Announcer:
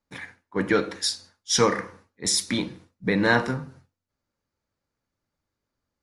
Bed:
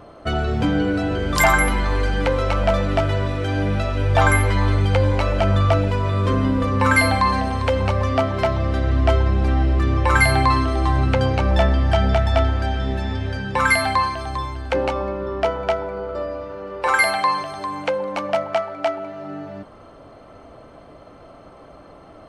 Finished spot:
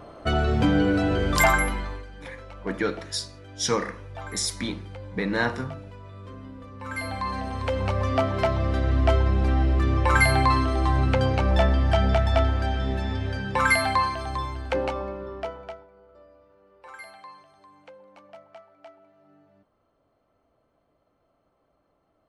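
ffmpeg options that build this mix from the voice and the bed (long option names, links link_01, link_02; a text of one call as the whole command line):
ffmpeg -i stem1.wav -i stem2.wav -filter_complex "[0:a]adelay=2100,volume=-4.5dB[link_01];[1:a]volume=18dB,afade=type=out:start_time=1.22:duration=0.83:silence=0.0841395,afade=type=in:start_time=6.79:duration=1.47:silence=0.112202,afade=type=out:start_time=14.55:duration=1.32:silence=0.0749894[link_02];[link_01][link_02]amix=inputs=2:normalize=0" out.wav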